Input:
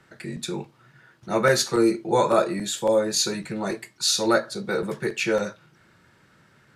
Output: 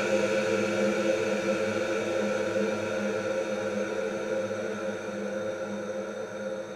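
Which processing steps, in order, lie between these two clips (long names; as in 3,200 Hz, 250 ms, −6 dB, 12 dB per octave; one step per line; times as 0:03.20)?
extreme stretch with random phases 30×, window 1.00 s, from 0:05.47
echo through a band-pass that steps 735 ms, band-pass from 280 Hz, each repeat 0.7 octaves, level −9.5 dB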